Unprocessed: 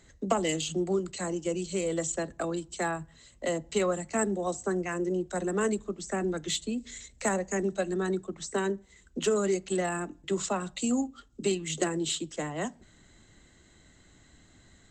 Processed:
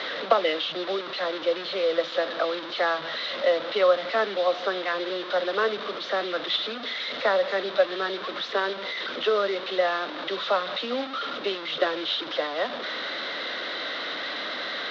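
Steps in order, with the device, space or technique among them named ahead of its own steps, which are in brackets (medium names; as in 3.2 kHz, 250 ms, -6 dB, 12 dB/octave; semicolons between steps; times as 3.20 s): digital answering machine (band-pass 370–3100 Hz; one-bit delta coder 32 kbps, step -33.5 dBFS; cabinet simulation 360–4100 Hz, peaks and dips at 370 Hz -6 dB, 550 Hz +6 dB, 850 Hz -5 dB, 1.3 kHz +4 dB, 2.5 kHz -4 dB, 3.7 kHz +9 dB); trim +7.5 dB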